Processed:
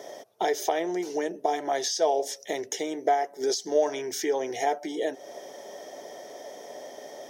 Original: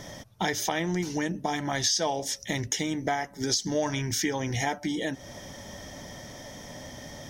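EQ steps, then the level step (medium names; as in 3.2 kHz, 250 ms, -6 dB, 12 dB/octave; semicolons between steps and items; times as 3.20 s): resonant high-pass 410 Hz, resonance Q 4.9; peaking EQ 690 Hz +9.5 dB 0.46 oct; treble shelf 9.3 kHz +4.5 dB; -5.5 dB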